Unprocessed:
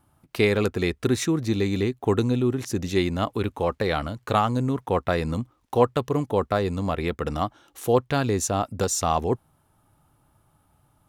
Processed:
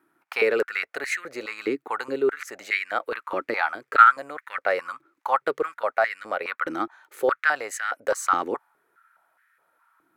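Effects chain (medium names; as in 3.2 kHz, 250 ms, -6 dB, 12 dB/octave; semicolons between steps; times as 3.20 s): high-order bell 1.6 kHz +10.5 dB 1.2 oct; tape speed +9%; step-sequenced high-pass 4.8 Hz 320–1800 Hz; trim -7.5 dB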